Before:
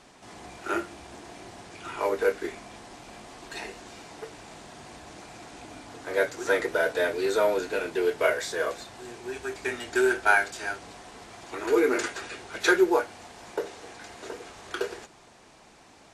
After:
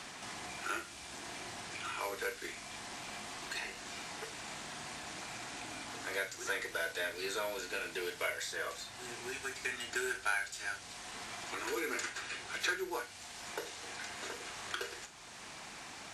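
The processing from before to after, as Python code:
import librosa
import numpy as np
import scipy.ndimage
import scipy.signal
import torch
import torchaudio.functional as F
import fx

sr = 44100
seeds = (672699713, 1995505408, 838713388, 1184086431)

y = fx.tone_stack(x, sr, knobs='5-5-5')
y = fx.doubler(y, sr, ms=42.0, db=-11.0)
y = fx.band_squash(y, sr, depth_pct=70)
y = y * librosa.db_to_amplitude(4.5)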